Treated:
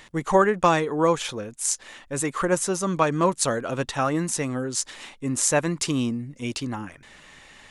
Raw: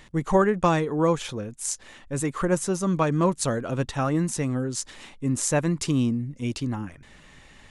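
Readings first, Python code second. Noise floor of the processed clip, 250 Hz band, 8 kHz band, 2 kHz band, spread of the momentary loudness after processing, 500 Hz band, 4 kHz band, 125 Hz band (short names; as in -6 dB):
-52 dBFS, -1.5 dB, +4.5 dB, +4.0 dB, 11 LU, +1.5 dB, +4.5 dB, -4.0 dB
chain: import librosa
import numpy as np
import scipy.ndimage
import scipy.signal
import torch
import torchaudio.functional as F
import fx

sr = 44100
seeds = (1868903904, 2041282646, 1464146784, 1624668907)

y = fx.low_shelf(x, sr, hz=280.0, db=-11.0)
y = y * 10.0 ** (4.5 / 20.0)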